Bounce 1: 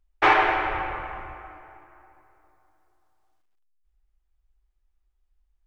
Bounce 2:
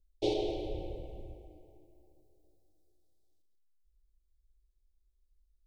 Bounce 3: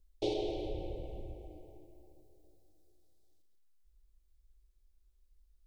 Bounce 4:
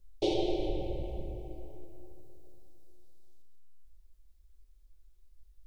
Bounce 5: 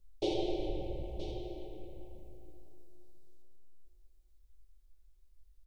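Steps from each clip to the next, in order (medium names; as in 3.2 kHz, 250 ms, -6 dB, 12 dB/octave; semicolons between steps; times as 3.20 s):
elliptic band-stop 520–3800 Hz, stop band 70 dB; trim -2 dB
compression 1.5:1, threshold -48 dBFS, peak gain reduction 8 dB; trim +4.5 dB
simulated room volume 380 m³, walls furnished, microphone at 1 m; trim +4 dB
delay 974 ms -11 dB; trim -3.5 dB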